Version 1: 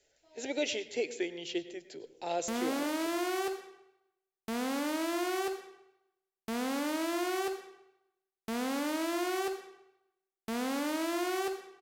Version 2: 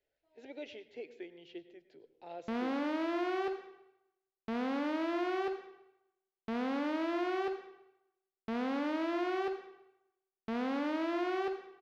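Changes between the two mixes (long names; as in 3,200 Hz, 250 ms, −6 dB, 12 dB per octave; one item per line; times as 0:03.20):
speech −11.0 dB
master: add high-frequency loss of the air 280 metres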